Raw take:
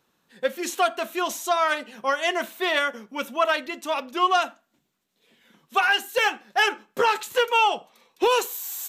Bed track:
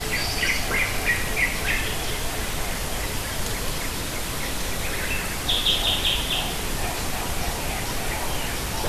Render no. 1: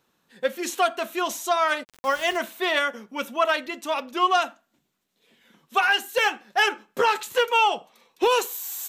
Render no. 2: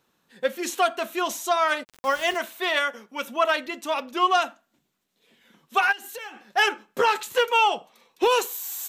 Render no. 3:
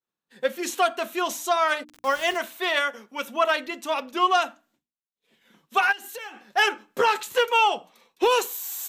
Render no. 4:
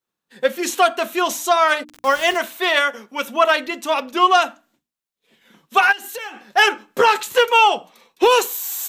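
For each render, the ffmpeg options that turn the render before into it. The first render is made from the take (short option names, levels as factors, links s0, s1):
-filter_complex "[0:a]asplit=3[s0][s1][s2];[s0]afade=t=out:st=1.83:d=0.02[s3];[s1]aeval=exprs='val(0)*gte(abs(val(0)),0.0178)':c=same,afade=t=in:st=1.83:d=0.02,afade=t=out:st=2.37:d=0.02[s4];[s2]afade=t=in:st=2.37:d=0.02[s5];[s3][s4][s5]amix=inputs=3:normalize=0"
-filter_complex "[0:a]asettb=1/sr,asplit=3[s0][s1][s2];[s0]atrim=end=2.344[s3];[s1]atrim=start=2.34:end=3.27,asetpts=PTS-STARTPTS,afade=t=in:d=0.004:c=qsin,afade=t=out:st=0.926:d=0.004:c=qsin,highpass=f=410:p=1[s4];[s2]atrim=start=3.266[s5];[s3][s4]acrossfade=d=0.004:c1=hsin:c2=qsin[s6];[s6][s5]acrossfade=d=0.004:c1=qsin:c2=hsin,asplit=3[s7][s8][s9];[s7]afade=t=out:st=5.91:d=0.02[s10];[s8]acompressor=threshold=0.0224:ratio=20:attack=3.2:release=140:knee=1:detection=peak,afade=t=in:st=5.91:d=0.02,afade=t=out:st=6.43:d=0.02[s11];[s9]afade=t=in:st=6.43:d=0.02[s12];[s10][s11][s12]amix=inputs=3:normalize=0"
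-af "agate=range=0.0224:threshold=0.00158:ratio=3:detection=peak,bandreject=f=60:t=h:w=6,bandreject=f=120:t=h:w=6,bandreject=f=180:t=h:w=6,bandreject=f=240:t=h:w=6,bandreject=f=300:t=h:w=6"
-af "volume=2.11"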